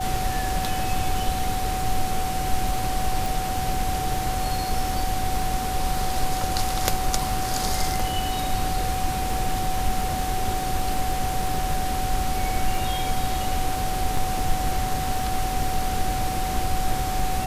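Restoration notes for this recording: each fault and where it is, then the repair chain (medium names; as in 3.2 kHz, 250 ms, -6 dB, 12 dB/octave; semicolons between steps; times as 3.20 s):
crackle 22 per s -29 dBFS
whine 750 Hz -27 dBFS
3.26 s: pop
14.17 s: dropout 3 ms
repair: de-click; band-stop 750 Hz, Q 30; interpolate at 14.17 s, 3 ms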